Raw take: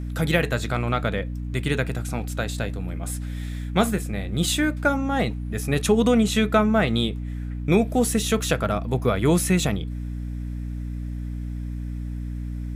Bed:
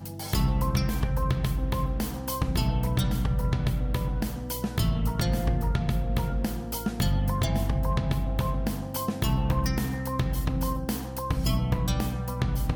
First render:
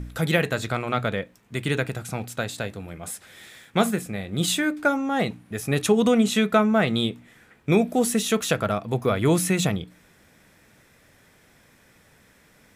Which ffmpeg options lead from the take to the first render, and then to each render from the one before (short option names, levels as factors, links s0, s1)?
-af "bandreject=f=60:t=h:w=4,bandreject=f=120:t=h:w=4,bandreject=f=180:t=h:w=4,bandreject=f=240:t=h:w=4,bandreject=f=300:t=h:w=4"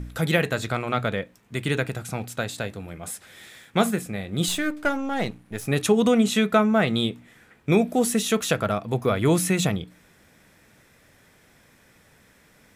-filter_complex "[0:a]asettb=1/sr,asplit=3[s0][s1][s2];[s0]atrim=end=4.484[s3];[s1]atrim=start=4.48:end=5.67,asetpts=PTS-STARTPTS,afade=t=in:d=0.004:c=qsin,afade=t=out:st=1.186:d=0.004:c=qsin,aeval=exprs='if(lt(val(0),0),0.447*val(0),val(0))':c=same[s4];[s2]atrim=start=5.666[s5];[s3][s4]acrossfade=d=0.004:c1=hsin:c2=qsin[s6];[s6][s5]acrossfade=d=0.004:c1=qsin:c2=hsin"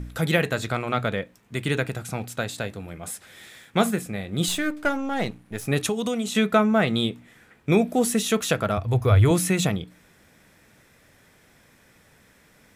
-filter_complex "[0:a]asettb=1/sr,asplit=3[s0][s1][s2];[s0]atrim=end=5.874[s3];[s1]atrim=start=5.87:end=6.35,asetpts=PTS-STARTPTS,afade=t=in:d=0.004:c=qsin,afade=t=out:st=0.476:d=0.004:c=qsin,acrossover=split=570|1200|2900[s4][s5][s6][s7];[s4]acompressor=threshold=0.0398:ratio=3[s8];[s5]acompressor=threshold=0.0178:ratio=3[s9];[s6]acompressor=threshold=0.00282:ratio=3[s10];[s7]acompressor=threshold=0.0282:ratio=3[s11];[s8][s9][s10][s11]amix=inputs=4:normalize=0[s12];[s2]atrim=start=6.346[s13];[s3][s12]acrossfade=d=0.004:c1=hsin:c2=qsin[s14];[s14][s13]acrossfade=d=0.004:c1=qsin:c2=hsin,asettb=1/sr,asplit=3[s15][s16][s17];[s15]atrim=end=8.774[s18];[s16]atrim=start=8.77:end=9.31,asetpts=PTS-STARTPTS,afade=t=in:d=0.004:c=qsin,afade=t=out:st=0.536:d=0.004:c=qsin,lowshelf=f=130:t=q:w=3:g=11[s19];[s17]atrim=start=9.306[s20];[s18][s19]acrossfade=d=0.004:c1=hsin:c2=qsin[s21];[s21][s20]acrossfade=d=0.004:c1=qsin:c2=hsin"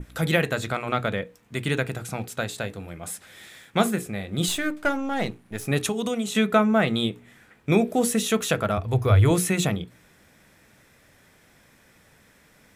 -af "bandreject=f=60:t=h:w=6,bandreject=f=120:t=h:w=6,bandreject=f=180:t=h:w=6,bandreject=f=240:t=h:w=6,bandreject=f=300:t=h:w=6,bandreject=f=360:t=h:w=6,bandreject=f=420:t=h:w=6,bandreject=f=480:t=h:w=6,adynamicequalizer=threshold=0.00398:dfrequency=4900:dqfactor=2.6:tfrequency=4900:tqfactor=2.6:attack=5:release=100:ratio=0.375:range=2:mode=cutabove:tftype=bell"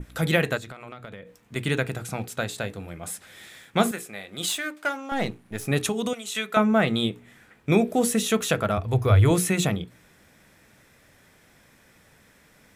-filter_complex "[0:a]asettb=1/sr,asplit=3[s0][s1][s2];[s0]atrim=end=0.574[s3];[s1]atrim=start=0.57:end=1.56,asetpts=PTS-STARTPTS,afade=t=in:d=0.004:c=qsin,afade=t=out:st=0.986:d=0.004:c=qsin,acompressor=threshold=0.0158:ratio=10:attack=3.2:release=140:knee=1:detection=peak[s4];[s2]atrim=start=1.556[s5];[s3][s4]acrossfade=d=0.004:c1=hsin:c2=qsin[s6];[s6][s5]acrossfade=d=0.004:c1=qsin:c2=hsin,asettb=1/sr,asplit=3[s7][s8][s9];[s7]atrim=end=3.914[s10];[s8]atrim=start=3.91:end=5.12,asetpts=PTS-STARTPTS,afade=t=in:d=0.004:c=qsin,afade=t=out:st=1.206:d=0.004:c=qsin,highpass=f=830:p=1[s11];[s9]atrim=start=5.116[s12];[s10][s11]acrossfade=d=0.004:c1=hsin:c2=qsin[s13];[s13][s12]acrossfade=d=0.004:c1=qsin:c2=hsin,asettb=1/sr,asplit=3[s14][s15][s16];[s14]atrim=end=6.134[s17];[s15]atrim=start=6.13:end=6.57,asetpts=PTS-STARTPTS,afade=t=in:d=0.004:c=qsin,afade=t=out:st=0.436:d=0.004:c=qsin,highpass=f=1400:p=1[s18];[s16]atrim=start=6.566[s19];[s17][s18]acrossfade=d=0.004:c1=hsin:c2=qsin[s20];[s20][s19]acrossfade=d=0.004:c1=qsin:c2=hsin"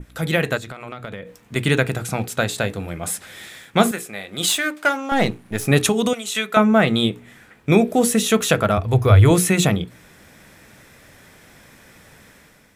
-af "dynaudnorm=f=180:g=5:m=2.82"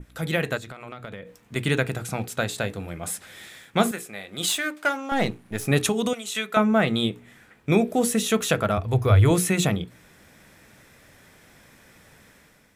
-af "volume=0.562"